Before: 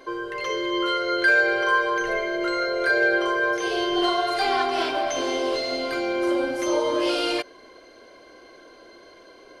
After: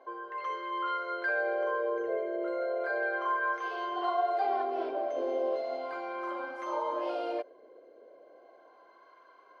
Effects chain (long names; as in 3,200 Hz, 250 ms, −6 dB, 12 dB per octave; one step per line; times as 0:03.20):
LFO wah 0.35 Hz 490–1,100 Hz, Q 2.6
level −1.5 dB